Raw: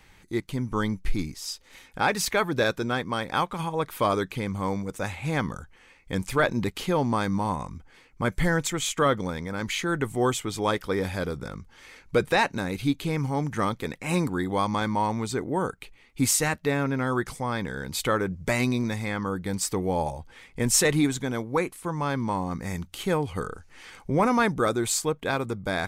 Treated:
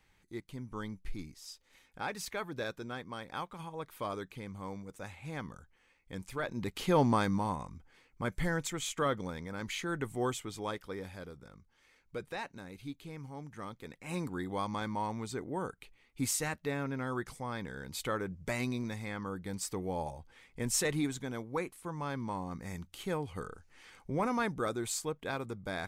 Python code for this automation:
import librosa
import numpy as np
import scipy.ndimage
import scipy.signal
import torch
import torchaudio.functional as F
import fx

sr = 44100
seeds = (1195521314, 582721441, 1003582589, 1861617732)

y = fx.gain(x, sr, db=fx.line((6.45, -14.0), (7.0, -1.0), (7.68, -9.0), (10.23, -9.0), (11.42, -18.0), (13.61, -18.0), (14.36, -10.0)))